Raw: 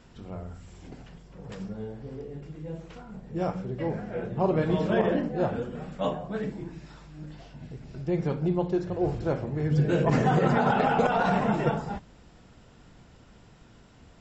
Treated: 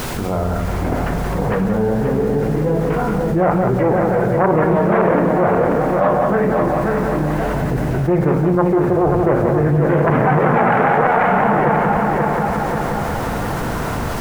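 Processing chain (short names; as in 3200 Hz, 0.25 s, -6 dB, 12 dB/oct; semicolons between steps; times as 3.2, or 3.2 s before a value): self-modulated delay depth 0.37 ms; LPF 2200 Hz 24 dB/oct; bell 950 Hz +7.5 dB 2.3 oct; AGC gain up to 11.5 dB; added noise pink -51 dBFS; on a send: multi-head echo 0.178 s, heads first and third, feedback 46%, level -8 dB; on the sum: fast leveller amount 70%; gain -3.5 dB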